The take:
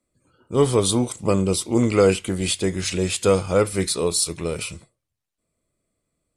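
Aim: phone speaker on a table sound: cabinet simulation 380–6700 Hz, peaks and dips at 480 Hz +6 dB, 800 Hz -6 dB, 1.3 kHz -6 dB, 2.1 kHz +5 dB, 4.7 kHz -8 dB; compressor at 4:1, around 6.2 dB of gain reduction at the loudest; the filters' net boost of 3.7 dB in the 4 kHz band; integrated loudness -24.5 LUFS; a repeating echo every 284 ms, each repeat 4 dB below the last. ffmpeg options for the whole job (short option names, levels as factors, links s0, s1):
-af "equalizer=f=4000:t=o:g=7.5,acompressor=threshold=0.112:ratio=4,highpass=f=380:w=0.5412,highpass=f=380:w=1.3066,equalizer=f=480:t=q:w=4:g=6,equalizer=f=800:t=q:w=4:g=-6,equalizer=f=1300:t=q:w=4:g=-6,equalizer=f=2100:t=q:w=4:g=5,equalizer=f=4700:t=q:w=4:g=-8,lowpass=f=6700:w=0.5412,lowpass=f=6700:w=1.3066,aecho=1:1:284|568|852|1136|1420|1704|1988|2272|2556:0.631|0.398|0.25|0.158|0.0994|0.0626|0.0394|0.0249|0.0157,volume=0.891"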